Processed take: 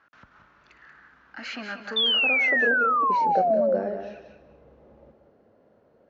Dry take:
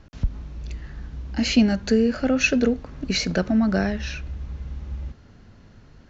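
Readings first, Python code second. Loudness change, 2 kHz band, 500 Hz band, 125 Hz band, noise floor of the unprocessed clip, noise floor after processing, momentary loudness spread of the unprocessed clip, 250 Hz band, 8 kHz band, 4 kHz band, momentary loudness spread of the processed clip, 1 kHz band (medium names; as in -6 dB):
+1.0 dB, +5.5 dB, 0.0 dB, -18.5 dB, -50 dBFS, -61 dBFS, 17 LU, -15.5 dB, no reading, +4.5 dB, 17 LU, +13.0 dB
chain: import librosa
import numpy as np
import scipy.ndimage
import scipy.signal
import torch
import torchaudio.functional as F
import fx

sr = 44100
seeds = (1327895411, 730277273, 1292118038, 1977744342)

p1 = fx.reverse_delay_fb(x, sr, ms=106, feedback_pct=51, wet_db=-12)
p2 = 10.0 ** (-16.5 / 20.0) * np.tanh(p1 / 10.0 ** (-16.5 / 20.0))
p3 = p1 + F.gain(torch.from_numpy(p2), -4.0).numpy()
p4 = fx.low_shelf(p3, sr, hz=75.0, db=-9.5)
p5 = fx.filter_sweep_bandpass(p4, sr, from_hz=1400.0, to_hz=540.0, start_s=1.76, end_s=2.86, q=3.1)
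p6 = fx.echo_feedback(p5, sr, ms=184, feedback_pct=15, wet_db=-8.5)
y = fx.spec_paint(p6, sr, seeds[0], shape='fall', start_s=1.96, length_s=1.8, low_hz=510.0, high_hz=3600.0, level_db=-22.0)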